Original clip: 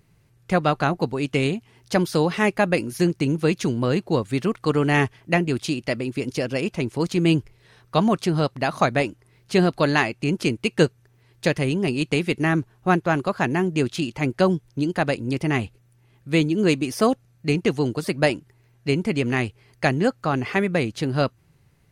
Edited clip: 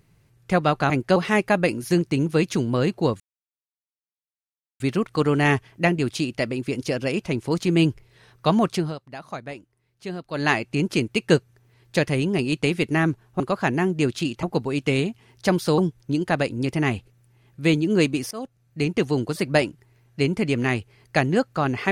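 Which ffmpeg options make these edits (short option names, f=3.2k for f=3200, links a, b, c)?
-filter_complex "[0:a]asplit=10[a][b][c][d][e][f][g][h][i][j];[a]atrim=end=0.902[k];[b]atrim=start=14.198:end=14.462[l];[c]atrim=start=2.248:end=4.29,asetpts=PTS-STARTPTS,afade=t=out:st=2.038:d=0.004:c=hsin,apad=pad_dur=1.6[m];[d]atrim=start=4.29:end=8.44,asetpts=PTS-STARTPTS,afade=t=in:d=0.004:c=hsin,afade=t=out:st=3.95:d=0.2:silence=0.199526[n];[e]atrim=start=8.44:end=9.8,asetpts=PTS-STARTPTS,volume=-14dB[o];[f]atrim=start=9.8:end=12.892,asetpts=PTS-STARTPTS,afade=t=in:d=0.2:silence=0.199526[p];[g]atrim=start=13.168:end=14.202[q];[h]atrim=start=0.898:end=2.252[r];[i]atrim=start=14.458:end=16.99,asetpts=PTS-STARTPTS,afade=t=out:st=2.528:d=0.004:c=hsin:silence=0.0749894[s];[j]atrim=start=16.99,asetpts=PTS-STARTPTS,afade=t=in:d=0.96:c=qsin:silence=0.0749894[t];[k][l]acrossfade=d=0.004:c1=hsin:c2=hsin[u];[m][n][o][p]concat=n=4:v=0:a=1[v];[u][v]acrossfade=d=0.004:c1=hsin:c2=hsin[w];[w][q]acrossfade=d=0.004:c1=hsin:c2=hsin[x];[x][r]acrossfade=d=0.004:c1=hsin:c2=hsin[y];[s][t]concat=n=2:v=0:a=1[z];[y][z]acrossfade=d=0.004:c1=hsin:c2=hsin"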